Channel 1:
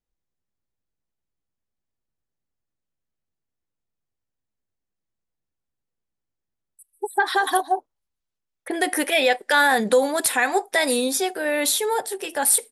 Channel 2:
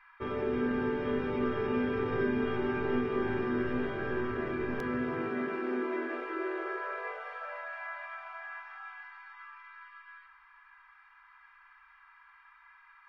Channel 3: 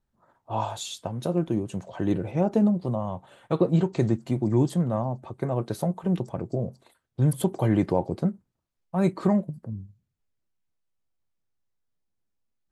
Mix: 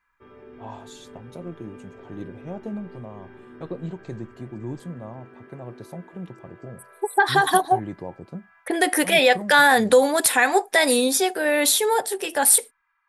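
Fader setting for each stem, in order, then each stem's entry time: +2.5, -14.0, -11.0 dB; 0.00, 0.00, 0.10 s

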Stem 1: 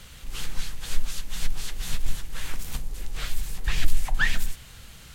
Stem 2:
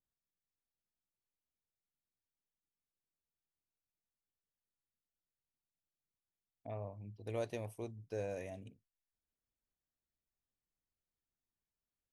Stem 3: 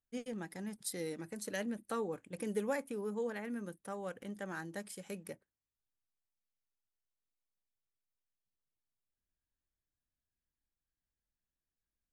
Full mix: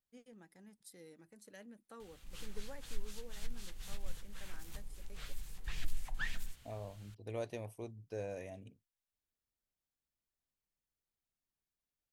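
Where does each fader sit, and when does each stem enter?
-16.0, -1.5, -16.0 dB; 2.00, 0.00, 0.00 s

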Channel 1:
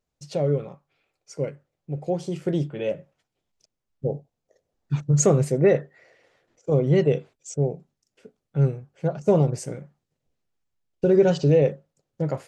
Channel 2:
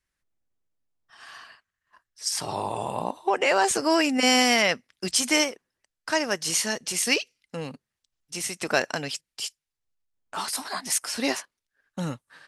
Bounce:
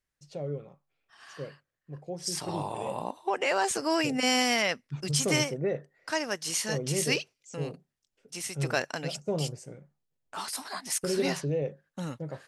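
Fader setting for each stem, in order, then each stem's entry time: -12.0, -5.5 dB; 0.00, 0.00 s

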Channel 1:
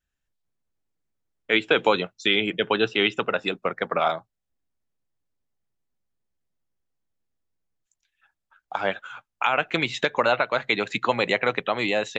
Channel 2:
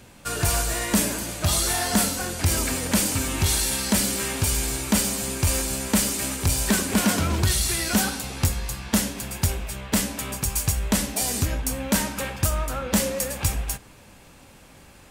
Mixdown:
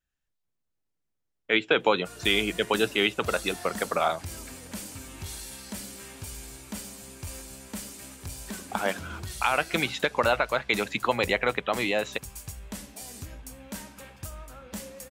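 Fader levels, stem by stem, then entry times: -2.5, -16.5 dB; 0.00, 1.80 s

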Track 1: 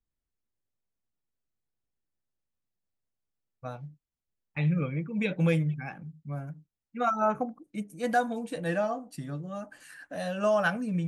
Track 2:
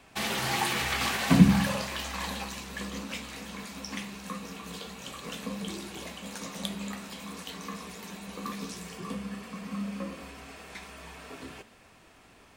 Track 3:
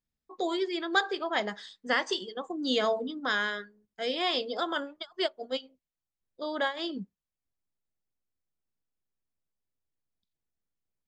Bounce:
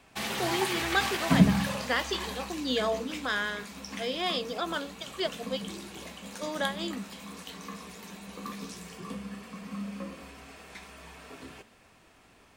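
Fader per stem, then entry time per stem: off, -2.5 dB, -1.5 dB; off, 0.00 s, 0.00 s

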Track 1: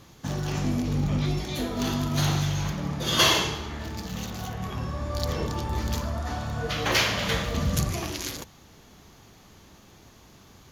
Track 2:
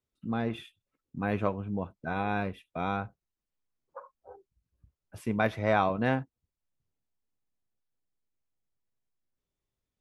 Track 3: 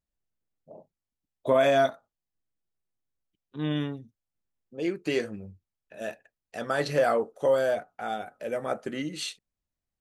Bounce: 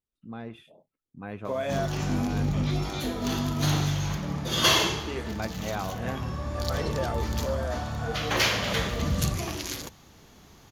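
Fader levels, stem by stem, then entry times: -1.0, -8.0, -9.0 dB; 1.45, 0.00, 0.00 s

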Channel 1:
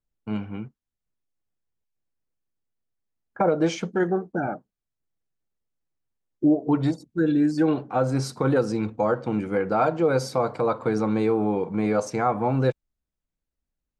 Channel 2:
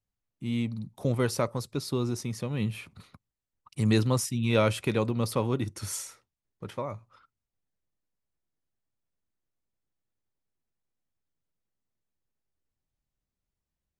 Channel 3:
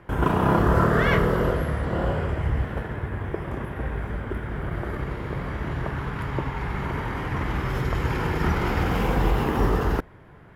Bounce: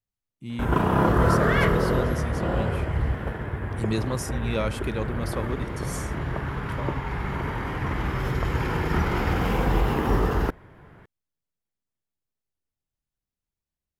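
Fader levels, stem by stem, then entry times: off, -3.5 dB, -0.5 dB; off, 0.00 s, 0.50 s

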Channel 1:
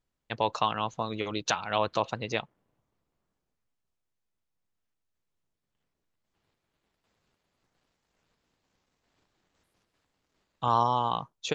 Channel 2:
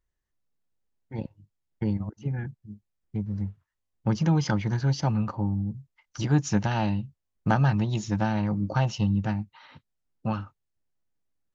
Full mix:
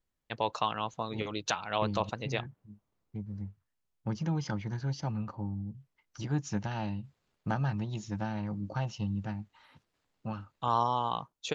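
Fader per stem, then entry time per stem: -3.5, -9.0 dB; 0.00, 0.00 s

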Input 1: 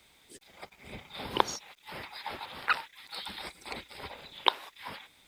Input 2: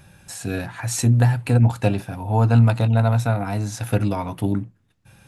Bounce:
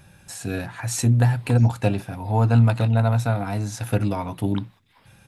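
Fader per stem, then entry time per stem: -16.0, -1.5 dB; 0.10, 0.00 s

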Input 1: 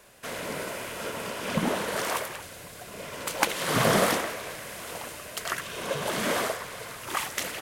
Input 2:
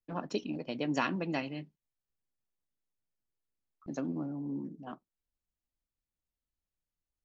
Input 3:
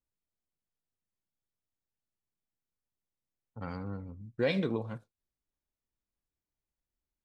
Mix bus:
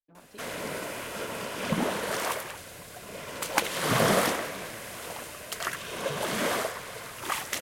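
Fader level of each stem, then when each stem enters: -1.0, -17.0, -18.5 dB; 0.15, 0.00, 0.00 s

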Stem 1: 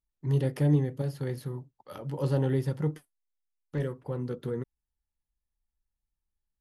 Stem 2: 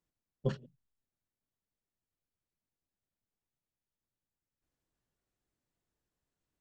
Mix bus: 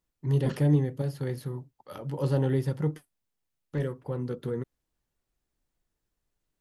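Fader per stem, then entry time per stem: +1.0, +2.5 dB; 0.00, 0.00 s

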